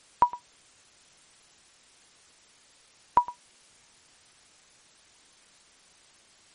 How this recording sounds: a quantiser's noise floor 10-bit, dither triangular; MP3

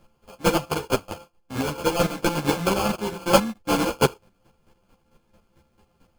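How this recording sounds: a buzz of ramps at a fixed pitch in blocks of 32 samples; chopped level 4.5 Hz, depth 65%, duty 25%; aliases and images of a low sample rate 1.9 kHz, jitter 0%; a shimmering, thickened sound

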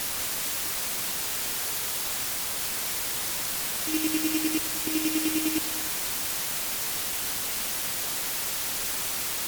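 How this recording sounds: a buzz of ramps at a fixed pitch in blocks of 16 samples; chopped level 9.9 Hz, depth 65%, duty 30%; a quantiser's noise floor 6-bit, dither triangular; MP3

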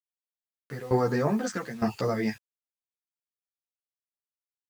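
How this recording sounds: tremolo saw down 1.1 Hz, depth 90%; a quantiser's noise floor 10-bit, dither none; a shimmering, thickened sound

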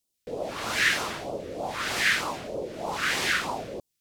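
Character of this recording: phasing stages 2, 3.2 Hz, lowest notch 790–1700 Hz

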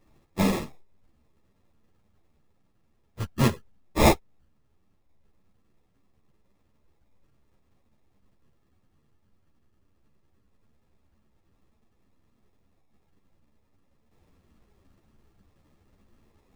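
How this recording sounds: phasing stages 12, 0.18 Hz, lowest notch 710–1700 Hz; aliases and images of a low sample rate 1.5 kHz, jitter 0%; a shimmering, thickened sound

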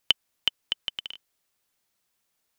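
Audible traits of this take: noise floor -77 dBFS; spectral tilt 0.0 dB/octave

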